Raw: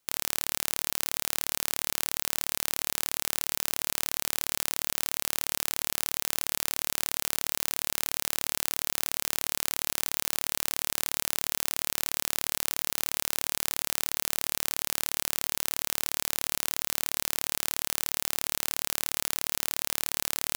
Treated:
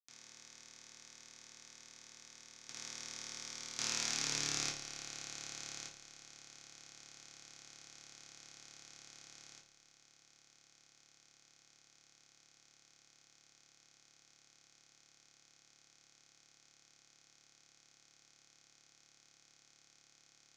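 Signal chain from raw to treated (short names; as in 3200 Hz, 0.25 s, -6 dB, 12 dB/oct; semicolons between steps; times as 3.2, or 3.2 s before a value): Wiener smoothing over 41 samples; Doppler pass-by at 4.21, 12 m/s, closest 2.7 m; low shelf 88 Hz +11 dB; level quantiser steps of 10 dB; ladder low-pass 6700 Hz, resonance 60%; reverb RT60 0.40 s, pre-delay 3 ms, DRR -4.5 dB; gain +7.5 dB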